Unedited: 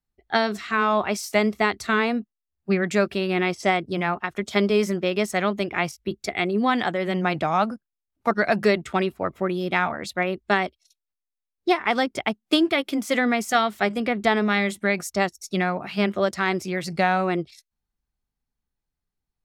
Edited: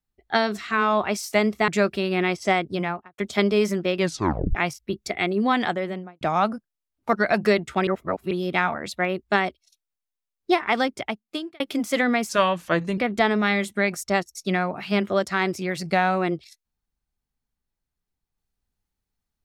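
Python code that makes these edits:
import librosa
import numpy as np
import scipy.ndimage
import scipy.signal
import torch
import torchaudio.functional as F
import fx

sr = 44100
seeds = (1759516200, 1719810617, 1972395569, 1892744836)

y = fx.studio_fade_out(x, sr, start_s=3.94, length_s=0.42)
y = fx.studio_fade_out(y, sr, start_s=6.86, length_s=0.53)
y = fx.edit(y, sr, fx.cut(start_s=1.68, length_s=1.18),
    fx.tape_stop(start_s=5.15, length_s=0.58),
    fx.reverse_span(start_s=9.05, length_s=0.44),
    fx.fade_out_span(start_s=11.98, length_s=0.8),
    fx.speed_span(start_s=13.47, length_s=0.57, speed=0.83), tone=tone)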